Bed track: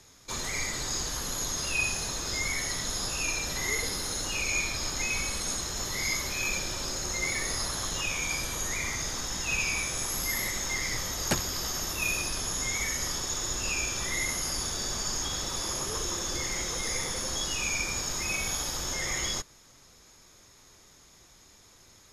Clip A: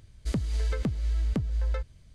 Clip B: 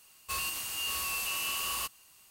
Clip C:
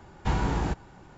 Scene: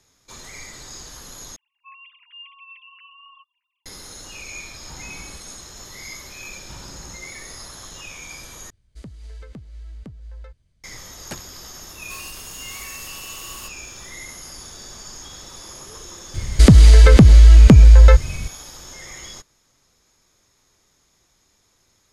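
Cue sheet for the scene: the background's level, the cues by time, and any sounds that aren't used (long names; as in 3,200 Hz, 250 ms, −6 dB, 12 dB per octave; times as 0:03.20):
bed track −6.5 dB
0:01.56: overwrite with B −11.5 dB + three sine waves on the formant tracks
0:04.63: mix in C −16.5 dB
0:06.43: mix in C −14 dB + parametric band 540 Hz −14 dB
0:08.70: overwrite with A −10.5 dB
0:11.81: mix in B −4 dB
0:16.34: mix in A −0.5 dB + boost into a limiter +26.5 dB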